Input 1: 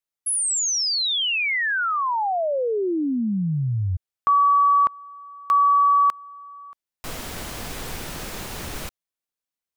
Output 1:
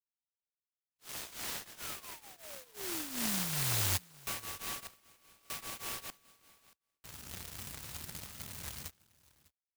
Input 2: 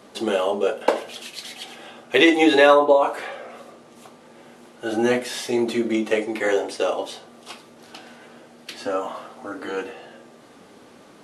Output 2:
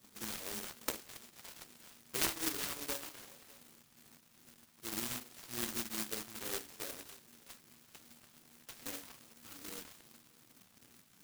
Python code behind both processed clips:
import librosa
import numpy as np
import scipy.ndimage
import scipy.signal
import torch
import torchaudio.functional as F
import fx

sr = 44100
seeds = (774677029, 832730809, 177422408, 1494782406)

y = scipy.signal.sosfilt(scipy.signal.butter(4, 67.0, 'highpass', fs=sr, output='sos'), x)
y = fx.tone_stack(y, sr, knobs='6-0-2')
y = fx.rider(y, sr, range_db=3, speed_s=0.5)
y = fx.phaser_stages(y, sr, stages=2, low_hz=410.0, high_hz=2200.0, hz=2.5, feedback_pct=15)
y = fx.air_absorb(y, sr, metres=190.0)
y = y + 10.0 ** (-23.0 / 20.0) * np.pad(y, (int(600 * sr / 1000.0), 0))[:len(y)]
y = (np.kron(scipy.signal.resample_poly(y, 1, 6), np.eye(6)[0]) * 6)[:len(y)]
y = fx.noise_mod_delay(y, sr, seeds[0], noise_hz=1300.0, depth_ms=0.15)